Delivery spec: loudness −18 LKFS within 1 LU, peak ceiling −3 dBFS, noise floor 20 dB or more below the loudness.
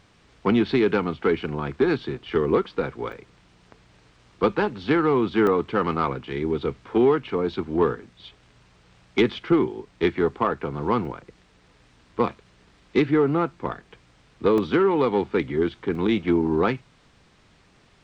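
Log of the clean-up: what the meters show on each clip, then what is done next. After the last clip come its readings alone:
number of dropouts 5; longest dropout 1.9 ms; integrated loudness −23.5 LKFS; sample peak −7.5 dBFS; target loudness −18.0 LKFS
→ repair the gap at 0:03.12/0:05.47/0:11.05/0:14.58/0:15.95, 1.9 ms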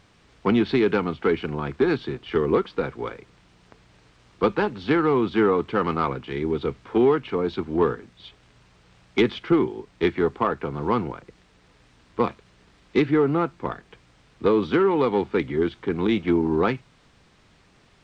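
number of dropouts 0; integrated loudness −23.5 LKFS; sample peak −7.5 dBFS; target loudness −18.0 LKFS
→ level +5.5 dB
brickwall limiter −3 dBFS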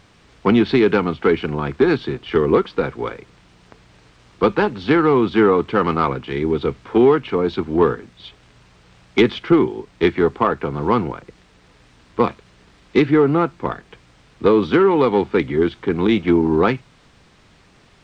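integrated loudness −18.5 LKFS; sample peak −3.0 dBFS; background noise floor −53 dBFS

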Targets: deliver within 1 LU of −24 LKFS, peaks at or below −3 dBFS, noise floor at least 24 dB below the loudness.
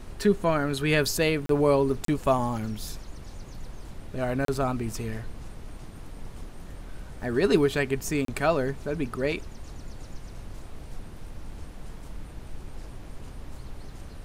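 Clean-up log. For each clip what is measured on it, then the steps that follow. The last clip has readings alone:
number of dropouts 4; longest dropout 33 ms; background noise floor −43 dBFS; target noise floor −51 dBFS; integrated loudness −26.5 LKFS; sample peak −8.0 dBFS; target loudness −24.0 LKFS
→ repair the gap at 0:01.46/0:02.05/0:04.45/0:08.25, 33 ms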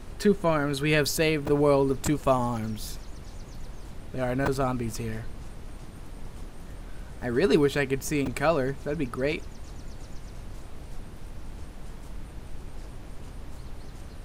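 number of dropouts 0; background noise floor −43 dBFS; target noise floor −51 dBFS
→ noise reduction from a noise print 8 dB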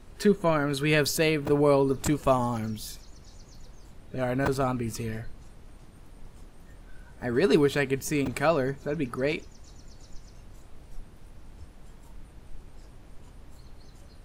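background noise floor −51 dBFS; integrated loudness −26.5 LKFS; sample peak −8.0 dBFS; target loudness −24.0 LKFS
→ level +2.5 dB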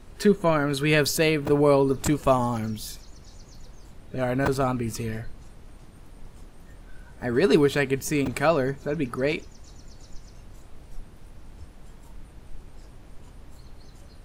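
integrated loudness −24.0 LKFS; sample peak −5.5 dBFS; background noise floor −48 dBFS

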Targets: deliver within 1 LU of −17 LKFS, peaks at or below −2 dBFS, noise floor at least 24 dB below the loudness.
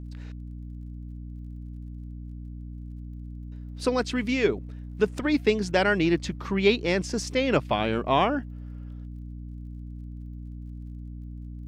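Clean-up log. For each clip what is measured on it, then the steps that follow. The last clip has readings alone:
crackle rate 28 per second; mains hum 60 Hz; hum harmonics up to 300 Hz; level of the hum −35 dBFS; integrated loudness −25.5 LKFS; sample peak −8.0 dBFS; target loudness −17.0 LKFS
→ click removal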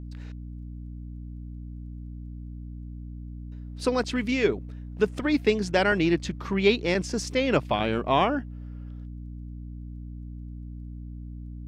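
crackle rate 0.086 per second; mains hum 60 Hz; hum harmonics up to 300 Hz; level of the hum −35 dBFS
→ mains-hum notches 60/120/180/240/300 Hz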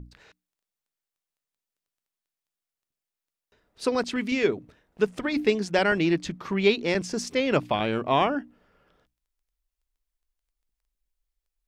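mains hum none found; integrated loudness −25.5 LKFS; sample peak −8.5 dBFS; target loudness −17.0 LKFS
→ level +8.5 dB
brickwall limiter −2 dBFS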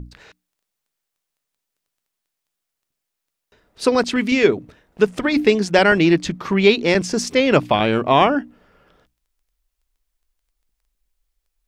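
integrated loudness −17.5 LKFS; sample peak −2.0 dBFS; background noise floor −81 dBFS

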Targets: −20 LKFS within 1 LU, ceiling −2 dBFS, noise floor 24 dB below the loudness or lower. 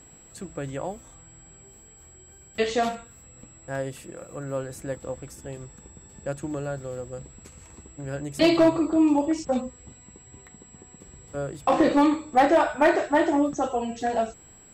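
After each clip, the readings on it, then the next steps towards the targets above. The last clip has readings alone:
share of clipped samples 0.3%; peaks flattened at −12.0 dBFS; interfering tone 7,700 Hz; level of the tone −50 dBFS; integrated loudness −25.0 LKFS; sample peak −12.0 dBFS; target loudness −20.0 LKFS
→ clipped peaks rebuilt −12 dBFS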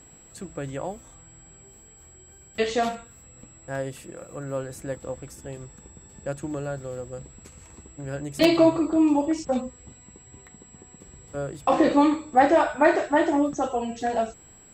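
share of clipped samples 0.0%; interfering tone 7,700 Hz; level of the tone −50 dBFS
→ notch filter 7,700 Hz, Q 30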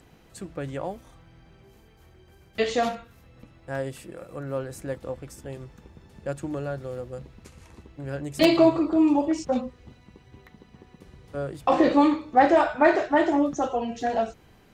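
interfering tone none found; integrated loudness −24.5 LKFS; sample peak −3.0 dBFS; target loudness −20.0 LKFS
→ level +4.5 dB
brickwall limiter −2 dBFS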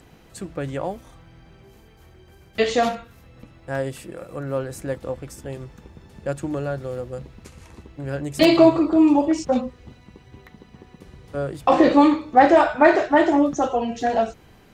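integrated loudness −20.0 LKFS; sample peak −2.0 dBFS; background noise floor −51 dBFS

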